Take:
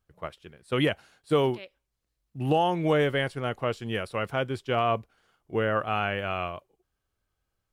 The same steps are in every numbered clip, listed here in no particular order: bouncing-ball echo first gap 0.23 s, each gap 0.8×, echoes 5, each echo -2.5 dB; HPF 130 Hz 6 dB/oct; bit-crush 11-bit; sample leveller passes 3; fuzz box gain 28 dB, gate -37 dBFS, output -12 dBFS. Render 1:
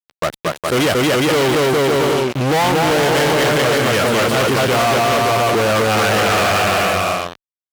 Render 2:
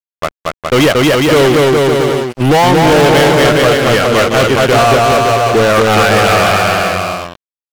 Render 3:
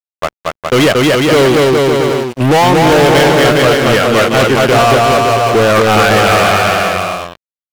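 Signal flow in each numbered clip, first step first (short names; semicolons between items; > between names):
bit-crush > bouncing-ball echo > sample leveller > fuzz box > HPF; HPF > fuzz box > bouncing-ball echo > sample leveller > bit-crush; fuzz box > bouncing-ball echo > bit-crush > HPF > sample leveller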